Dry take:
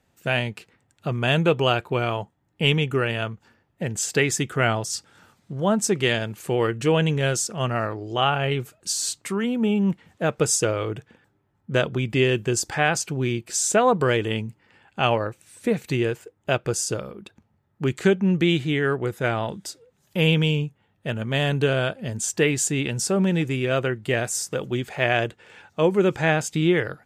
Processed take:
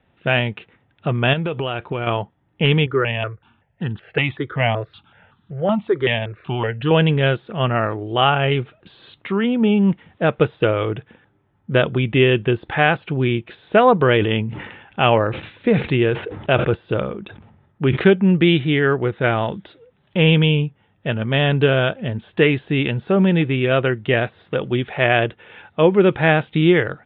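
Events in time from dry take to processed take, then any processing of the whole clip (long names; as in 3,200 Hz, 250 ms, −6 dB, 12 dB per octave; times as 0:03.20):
0:01.33–0:02.07: downward compressor 8 to 1, threshold −25 dBFS
0:02.86–0:06.91: step-sequenced phaser 5.3 Hz 730–2,200 Hz
0:14.10–0:18.07: level that may fall only so fast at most 56 dB per second
whole clip: de-essing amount 60%; Butterworth low-pass 3,700 Hz 96 dB per octave; level +5.5 dB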